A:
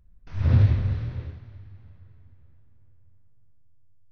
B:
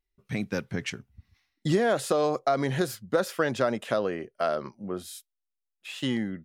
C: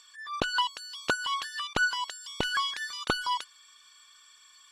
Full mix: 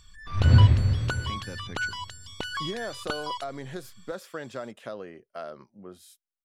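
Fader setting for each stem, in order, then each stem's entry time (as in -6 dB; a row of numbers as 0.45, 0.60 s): +2.0, -11.0, -4.5 dB; 0.00, 0.95, 0.00 s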